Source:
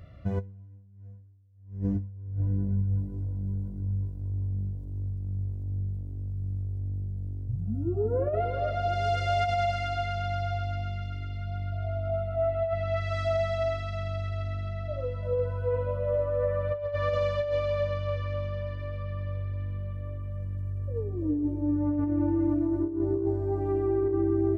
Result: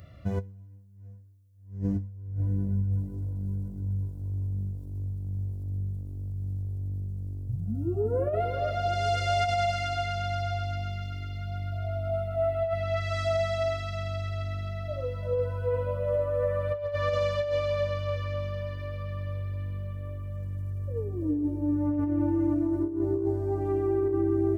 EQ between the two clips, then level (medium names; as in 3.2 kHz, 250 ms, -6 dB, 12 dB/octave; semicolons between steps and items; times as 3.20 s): high-pass 51 Hz; treble shelf 4.8 kHz +11 dB; 0.0 dB